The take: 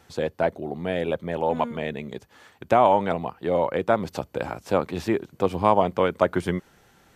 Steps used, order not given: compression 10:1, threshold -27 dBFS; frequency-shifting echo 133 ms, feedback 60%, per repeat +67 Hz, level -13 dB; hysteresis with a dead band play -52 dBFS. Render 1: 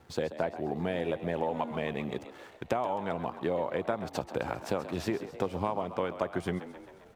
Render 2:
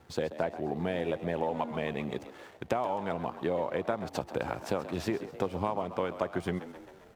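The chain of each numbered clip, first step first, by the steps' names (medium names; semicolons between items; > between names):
hysteresis with a dead band > compression > frequency-shifting echo; compression > frequency-shifting echo > hysteresis with a dead band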